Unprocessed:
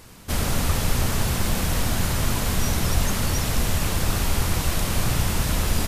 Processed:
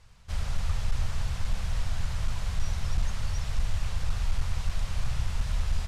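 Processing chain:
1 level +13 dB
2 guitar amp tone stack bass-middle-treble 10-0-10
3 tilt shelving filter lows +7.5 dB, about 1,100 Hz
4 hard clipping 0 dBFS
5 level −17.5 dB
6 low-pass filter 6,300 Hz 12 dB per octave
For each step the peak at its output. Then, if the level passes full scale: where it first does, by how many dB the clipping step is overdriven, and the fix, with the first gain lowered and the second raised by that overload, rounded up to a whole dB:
+4.5, −0.5, +5.0, 0.0, −17.5, −17.5 dBFS
step 1, 5.0 dB
step 1 +8 dB, step 5 −12.5 dB

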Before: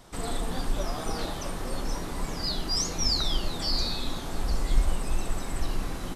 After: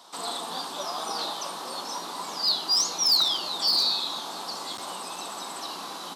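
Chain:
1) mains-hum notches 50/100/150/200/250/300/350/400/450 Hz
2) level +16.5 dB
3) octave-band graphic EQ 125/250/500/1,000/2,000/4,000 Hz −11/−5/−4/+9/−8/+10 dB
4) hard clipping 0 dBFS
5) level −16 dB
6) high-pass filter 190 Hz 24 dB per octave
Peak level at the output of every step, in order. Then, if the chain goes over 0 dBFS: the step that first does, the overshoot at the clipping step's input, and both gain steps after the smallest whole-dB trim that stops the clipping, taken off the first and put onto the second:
−10.0, +6.5, +6.5, 0.0, −16.0, −14.0 dBFS
step 2, 6.5 dB
step 2 +9.5 dB, step 5 −9 dB

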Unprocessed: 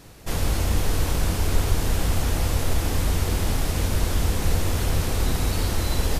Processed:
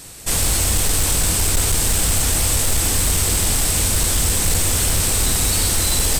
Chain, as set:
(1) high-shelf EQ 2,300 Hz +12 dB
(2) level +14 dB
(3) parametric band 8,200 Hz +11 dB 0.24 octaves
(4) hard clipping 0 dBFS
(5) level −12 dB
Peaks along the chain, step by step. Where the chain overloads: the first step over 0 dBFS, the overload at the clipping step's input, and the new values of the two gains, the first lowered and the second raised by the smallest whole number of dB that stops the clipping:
−5.0, +9.0, +9.5, 0.0, −12.0 dBFS
step 2, 9.5 dB
step 2 +4 dB, step 5 −2 dB

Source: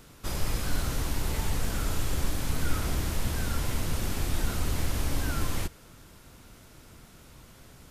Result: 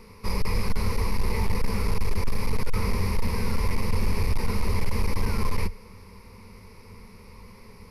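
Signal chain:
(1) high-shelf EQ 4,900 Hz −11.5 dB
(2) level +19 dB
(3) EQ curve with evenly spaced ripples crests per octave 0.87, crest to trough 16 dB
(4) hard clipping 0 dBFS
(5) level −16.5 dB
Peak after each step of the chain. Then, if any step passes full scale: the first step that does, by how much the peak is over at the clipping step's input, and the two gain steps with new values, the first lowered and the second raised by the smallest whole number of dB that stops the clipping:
−15.0, +4.0, +9.5, 0.0, −16.5 dBFS
step 2, 9.5 dB
step 2 +9 dB, step 5 −6.5 dB

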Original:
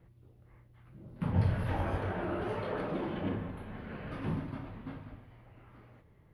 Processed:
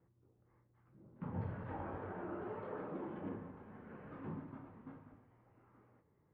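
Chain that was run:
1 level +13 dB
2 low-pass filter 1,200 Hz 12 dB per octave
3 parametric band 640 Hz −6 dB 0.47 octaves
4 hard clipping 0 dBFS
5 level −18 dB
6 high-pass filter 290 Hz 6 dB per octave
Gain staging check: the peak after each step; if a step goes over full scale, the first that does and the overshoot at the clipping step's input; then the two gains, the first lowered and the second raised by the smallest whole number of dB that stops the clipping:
−2.5, −2.5, −2.5, −2.5, −20.5, −31.0 dBFS
no step passes full scale

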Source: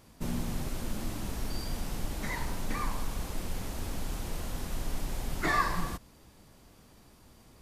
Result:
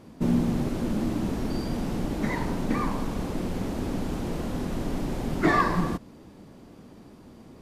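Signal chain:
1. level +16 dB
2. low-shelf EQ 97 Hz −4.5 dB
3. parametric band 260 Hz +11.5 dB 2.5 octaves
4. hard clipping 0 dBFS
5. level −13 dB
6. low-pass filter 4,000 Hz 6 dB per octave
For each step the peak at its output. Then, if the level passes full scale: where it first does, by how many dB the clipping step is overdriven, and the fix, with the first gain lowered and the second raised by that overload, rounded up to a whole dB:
+2.0, +1.5, +5.0, 0.0, −13.0, −13.0 dBFS
step 1, 5.0 dB
step 1 +11 dB, step 5 −8 dB

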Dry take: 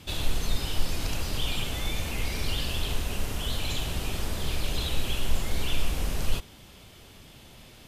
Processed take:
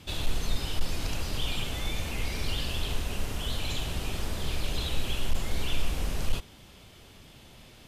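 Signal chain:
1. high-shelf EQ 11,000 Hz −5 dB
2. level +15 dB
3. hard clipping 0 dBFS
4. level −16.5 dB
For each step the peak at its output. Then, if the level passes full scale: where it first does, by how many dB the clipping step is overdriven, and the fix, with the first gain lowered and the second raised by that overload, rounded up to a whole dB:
−11.0, +4.0, 0.0, −16.5 dBFS
step 2, 4.0 dB
step 2 +11 dB, step 4 −12.5 dB

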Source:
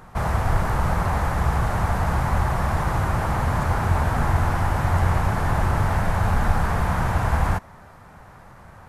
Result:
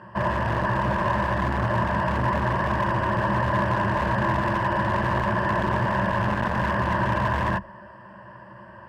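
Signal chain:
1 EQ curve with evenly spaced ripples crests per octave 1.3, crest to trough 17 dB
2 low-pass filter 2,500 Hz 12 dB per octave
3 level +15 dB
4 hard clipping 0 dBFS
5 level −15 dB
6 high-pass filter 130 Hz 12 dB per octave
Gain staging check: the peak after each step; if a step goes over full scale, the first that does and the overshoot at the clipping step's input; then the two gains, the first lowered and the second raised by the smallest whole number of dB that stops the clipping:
−5.0, −5.0, +10.0, 0.0, −15.0, −10.5 dBFS
step 3, 10.0 dB
step 3 +5 dB, step 5 −5 dB

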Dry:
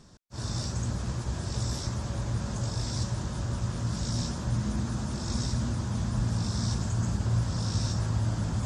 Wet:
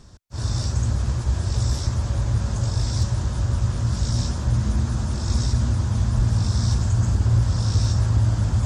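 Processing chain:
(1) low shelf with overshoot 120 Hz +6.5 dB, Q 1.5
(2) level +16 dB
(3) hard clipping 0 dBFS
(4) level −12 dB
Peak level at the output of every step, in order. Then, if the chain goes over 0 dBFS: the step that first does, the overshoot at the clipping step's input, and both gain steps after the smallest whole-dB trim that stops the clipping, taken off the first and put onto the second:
−12.0, +4.0, 0.0, −12.0 dBFS
step 2, 4.0 dB
step 2 +12 dB, step 4 −8 dB

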